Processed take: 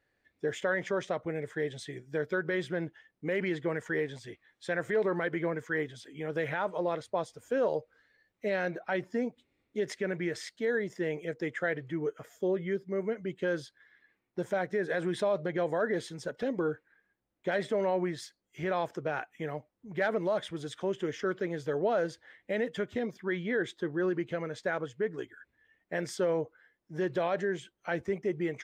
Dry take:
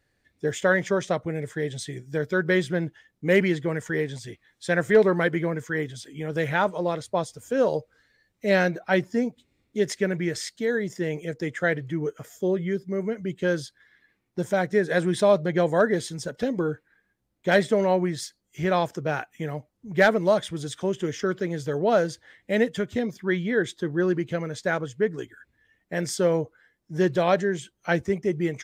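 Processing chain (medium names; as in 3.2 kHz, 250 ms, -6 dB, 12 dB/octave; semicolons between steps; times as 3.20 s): peak limiter -17 dBFS, peak gain reduction 8.5 dB; tone controls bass -8 dB, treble -10 dB; trim -2.5 dB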